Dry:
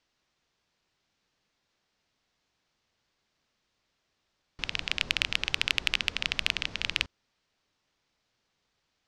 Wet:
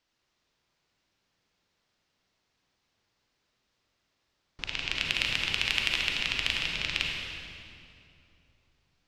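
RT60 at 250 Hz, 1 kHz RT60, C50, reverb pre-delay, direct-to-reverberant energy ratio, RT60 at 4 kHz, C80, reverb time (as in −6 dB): 3.3 s, 2.4 s, 0.0 dB, 36 ms, −1.0 dB, 2.0 s, 1.0 dB, 2.6 s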